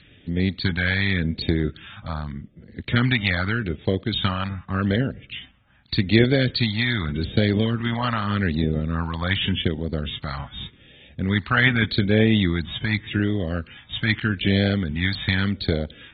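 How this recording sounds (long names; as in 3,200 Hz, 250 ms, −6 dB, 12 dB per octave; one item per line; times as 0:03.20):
phaser sweep stages 2, 0.84 Hz, lowest notch 390–1,100 Hz
AAC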